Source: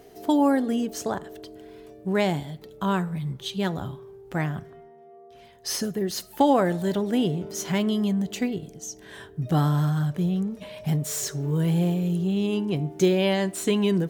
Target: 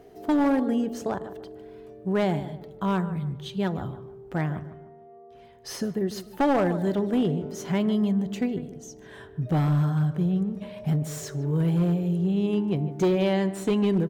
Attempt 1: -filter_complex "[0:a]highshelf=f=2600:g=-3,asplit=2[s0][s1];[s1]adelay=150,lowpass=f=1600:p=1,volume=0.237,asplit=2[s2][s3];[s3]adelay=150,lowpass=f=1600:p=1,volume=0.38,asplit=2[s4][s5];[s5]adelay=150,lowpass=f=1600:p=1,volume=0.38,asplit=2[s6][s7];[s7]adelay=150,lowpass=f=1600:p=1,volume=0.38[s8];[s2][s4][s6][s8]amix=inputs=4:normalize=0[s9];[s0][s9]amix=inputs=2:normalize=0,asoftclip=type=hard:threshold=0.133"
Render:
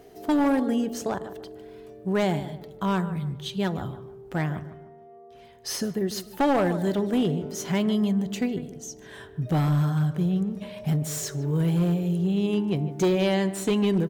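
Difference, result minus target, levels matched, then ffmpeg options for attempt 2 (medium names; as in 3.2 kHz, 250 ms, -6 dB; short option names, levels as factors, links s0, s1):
4 kHz band +4.5 dB
-filter_complex "[0:a]highshelf=f=2600:g=-10.5,asplit=2[s0][s1];[s1]adelay=150,lowpass=f=1600:p=1,volume=0.237,asplit=2[s2][s3];[s3]adelay=150,lowpass=f=1600:p=1,volume=0.38,asplit=2[s4][s5];[s5]adelay=150,lowpass=f=1600:p=1,volume=0.38,asplit=2[s6][s7];[s7]adelay=150,lowpass=f=1600:p=1,volume=0.38[s8];[s2][s4][s6][s8]amix=inputs=4:normalize=0[s9];[s0][s9]amix=inputs=2:normalize=0,asoftclip=type=hard:threshold=0.133"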